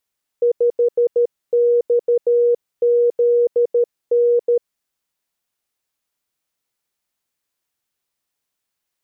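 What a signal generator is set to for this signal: Morse "5XZN" 13 wpm 478 Hz -11.5 dBFS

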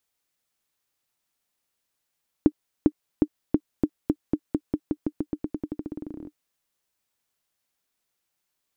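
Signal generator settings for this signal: bouncing ball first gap 0.40 s, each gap 0.9, 301 Hz, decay 59 ms -5.5 dBFS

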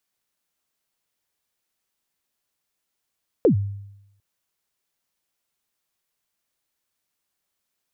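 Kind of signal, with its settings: kick drum length 0.75 s, from 540 Hz, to 100 Hz, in 0.102 s, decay 0.86 s, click off, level -10.5 dB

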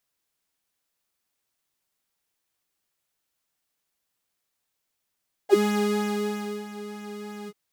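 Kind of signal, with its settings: synth patch with pulse-width modulation G#4, sub -13 dB, filter highpass, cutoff 140 Hz, Q 6.1, filter envelope 2.5 oct, filter decay 0.07 s, filter sustain 25%, attack 39 ms, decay 1.12 s, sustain -15.5 dB, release 0.05 s, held 1.99 s, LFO 3.1 Hz, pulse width 29%, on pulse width 20%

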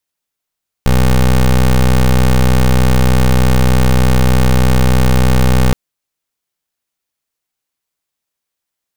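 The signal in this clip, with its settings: pulse 63.3 Hz, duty 19% -9 dBFS 4.87 s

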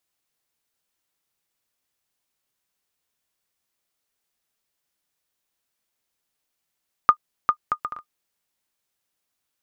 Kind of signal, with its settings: bouncing ball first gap 0.40 s, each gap 0.57, 1220 Hz, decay 78 ms -2.5 dBFS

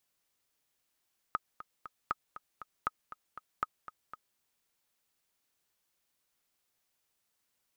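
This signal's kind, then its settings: metronome 237 bpm, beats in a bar 3, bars 4, 1260 Hz, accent 14 dB -17 dBFS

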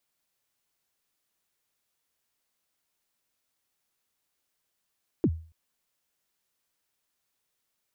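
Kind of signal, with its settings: kick drum length 0.28 s, from 400 Hz, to 81 Hz, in 57 ms, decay 0.40 s, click off, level -16.5 dB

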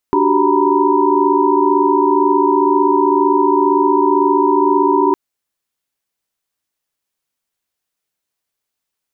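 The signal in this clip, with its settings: chord D4/F#4/G4/A#5/B5 sine, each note -16.5 dBFS 5.01 s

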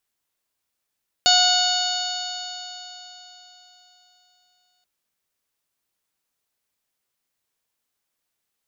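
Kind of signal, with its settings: stretched partials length 3.58 s, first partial 726 Hz, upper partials -5/-17.5/-1.5/0/3.5/-8/-13.5/-3 dB, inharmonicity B 0.0011, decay 3.91 s, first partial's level -19.5 dB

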